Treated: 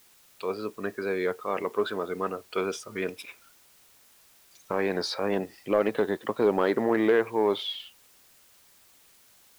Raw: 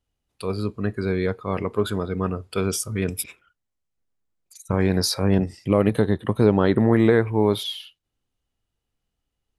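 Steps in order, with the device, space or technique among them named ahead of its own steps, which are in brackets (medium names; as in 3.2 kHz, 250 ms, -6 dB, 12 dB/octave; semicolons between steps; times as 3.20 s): tape answering machine (band-pass 400–3300 Hz; saturation -12 dBFS, distortion -20 dB; wow and flutter; white noise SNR 29 dB)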